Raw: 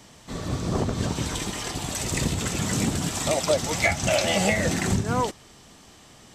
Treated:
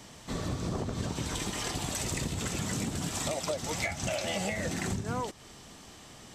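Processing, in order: compression, threshold -30 dBFS, peak gain reduction 13 dB

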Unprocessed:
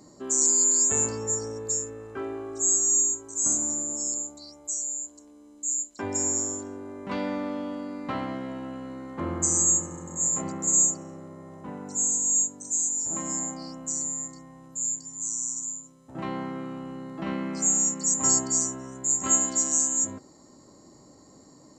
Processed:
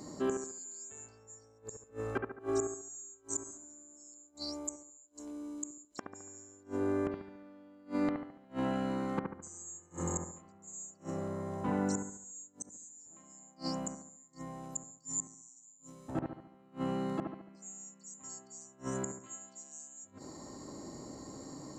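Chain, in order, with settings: dynamic bell 2.9 kHz, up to +4 dB, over -40 dBFS, Q 0.84; inverted gate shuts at -27 dBFS, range -31 dB; bucket-brigade echo 71 ms, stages 1024, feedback 45%, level -4.5 dB; trim +4.5 dB

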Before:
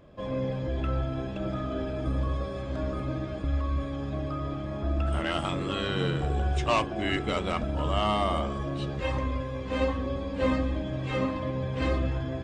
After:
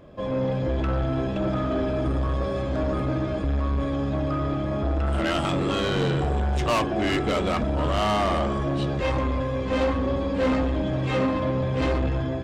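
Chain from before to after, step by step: level rider gain up to 3.5 dB; saturation -24.5 dBFS, distortion -11 dB; peaking EQ 420 Hz +3 dB 3 oct; trim +3.5 dB

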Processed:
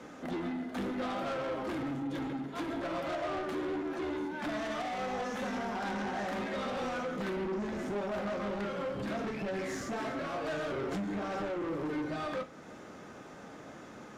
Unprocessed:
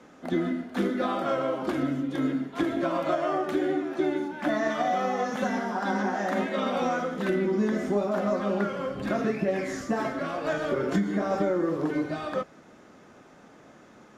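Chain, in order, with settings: in parallel at +3 dB: compression, threshold -39 dBFS, peak gain reduction 17 dB; on the sum: saturation -29 dBFS, distortion -8 dB; reverberation, pre-delay 3 ms, DRR 10 dB; trim -4 dB

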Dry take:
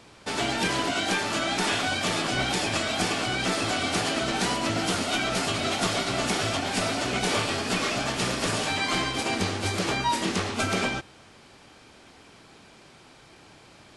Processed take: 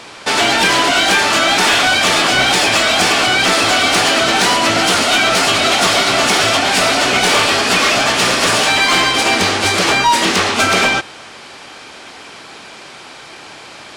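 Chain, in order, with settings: overdrive pedal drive 16 dB, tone 7.3 kHz, clips at -12.5 dBFS; trim +8.5 dB

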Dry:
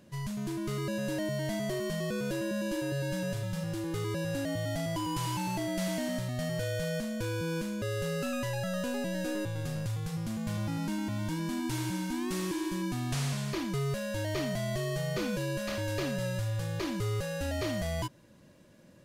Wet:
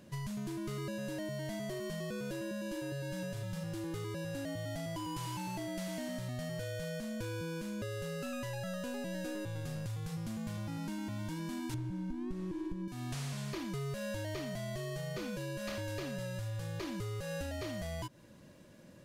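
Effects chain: 11.74–12.88 s: tilt EQ -4 dB/octave; compression 12:1, threshold -37 dBFS, peak gain reduction 18.5 dB; trim +1 dB

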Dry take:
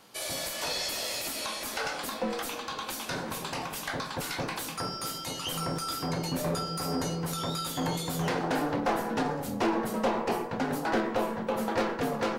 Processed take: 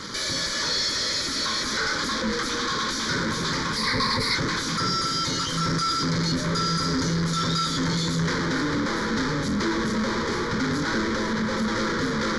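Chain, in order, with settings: in parallel at -3.5 dB: fuzz box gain 54 dB, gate -58 dBFS; 3.76–4.35 s: on the sum: rippled EQ curve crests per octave 0.92, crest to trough 12 dB; resampled via 22.05 kHz; static phaser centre 2.7 kHz, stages 6; trim -6 dB

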